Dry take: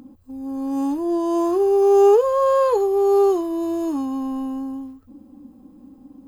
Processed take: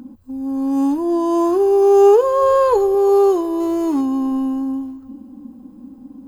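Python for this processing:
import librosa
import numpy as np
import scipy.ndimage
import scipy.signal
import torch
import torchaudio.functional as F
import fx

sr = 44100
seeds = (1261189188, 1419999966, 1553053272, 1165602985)

y = fx.zero_step(x, sr, step_db=-36.5, at=(3.6, 4.01))
y = fx.small_body(y, sr, hz=(230.0, 970.0, 1500.0), ring_ms=45, db=7)
y = fx.low_shelf(y, sr, hz=110.0, db=11.5, at=(2.42, 2.95))
y = fx.echo_feedback(y, sr, ms=357, feedback_pct=50, wet_db=-23)
y = y * librosa.db_to_amplitude(2.5)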